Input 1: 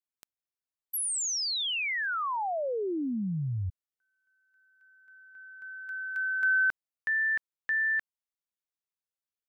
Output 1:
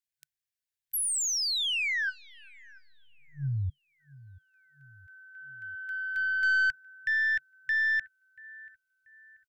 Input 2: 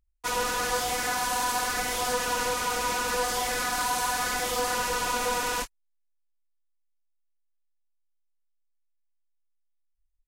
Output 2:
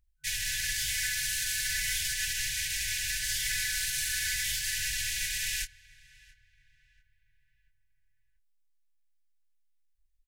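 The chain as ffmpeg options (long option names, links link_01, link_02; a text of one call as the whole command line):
ffmpeg -i in.wav -filter_complex "[0:a]asplit=2[link_01][link_02];[link_02]adelay=685,lowpass=frequency=1800:poles=1,volume=-21dB,asplit=2[link_03][link_04];[link_04]adelay=685,lowpass=frequency=1800:poles=1,volume=0.52,asplit=2[link_05][link_06];[link_06]adelay=685,lowpass=frequency=1800:poles=1,volume=0.52,asplit=2[link_07][link_08];[link_08]adelay=685,lowpass=frequency=1800:poles=1,volume=0.52[link_09];[link_01][link_03][link_05][link_07][link_09]amix=inputs=5:normalize=0,aeval=exprs='(tanh(14.1*val(0)+0.15)-tanh(0.15))/14.1':channel_layout=same,afftfilt=real='re*(1-between(b*sr/4096,150,1500))':imag='im*(1-between(b*sr/4096,150,1500))':win_size=4096:overlap=0.75,volume=2.5dB" out.wav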